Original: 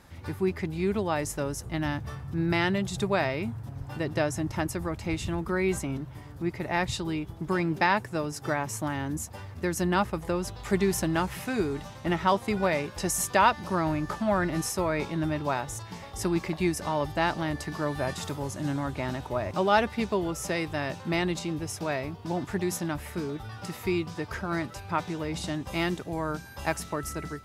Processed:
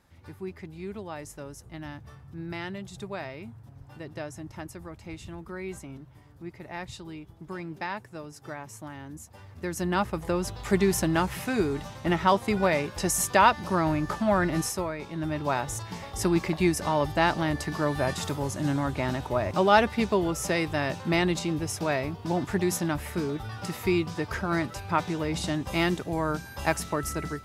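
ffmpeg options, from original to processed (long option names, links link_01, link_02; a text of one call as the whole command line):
ffmpeg -i in.wav -af "volume=13.5dB,afade=type=in:start_time=9.25:duration=1.19:silence=0.251189,afade=type=out:start_time=14.6:duration=0.38:silence=0.298538,afade=type=in:start_time=14.98:duration=0.7:silence=0.266073" out.wav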